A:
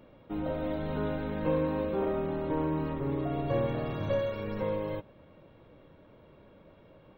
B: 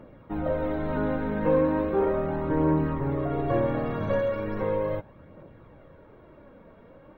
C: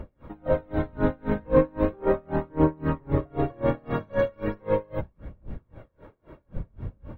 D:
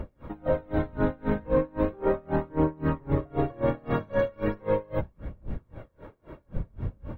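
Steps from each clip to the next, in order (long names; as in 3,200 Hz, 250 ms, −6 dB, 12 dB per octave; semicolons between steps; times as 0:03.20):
high shelf with overshoot 2,300 Hz −6.5 dB, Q 1.5; phase shifter 0.37 Hz, delay 4.6 ms, feedback 35%; level +4.5 dB
wind on the microphone 94 Hz −36 dBFS; tremolo with a sine in dB 3.8 Hz, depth 33 dB; level +6.5 dB
downward compressor 3 to 1, threshold −25 dBFS, peak gain reduction 9.5 dB; level +3 dB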